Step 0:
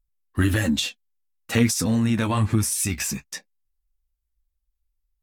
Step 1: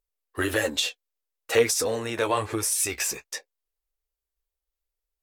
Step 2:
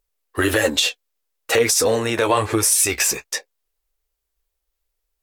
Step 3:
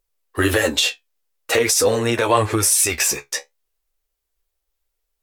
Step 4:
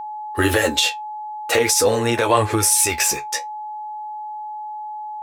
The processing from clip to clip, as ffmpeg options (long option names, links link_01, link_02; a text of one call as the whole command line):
ffmpeg -i in.wav -af "lowshelf=frequency=300:width_type=q:width=3:gain=-13" out.wav
ffmpeg -i in.wav -af "alimiter=limit=-15.5dB:level=0:latency=1:release=70,volume=9dB" out.wav
ffmpeg -i in.wav -af "flanger=delay=7.7:depth=7.1:regen=52:speed=0.45:shape=triangular,volume=4.5dB" out.wav
ffmpeg -i in.wav -af "aeval=exprs='val(0)+0.0398*sin(2*PI*850*n/s)':channel_layout=same" out.wav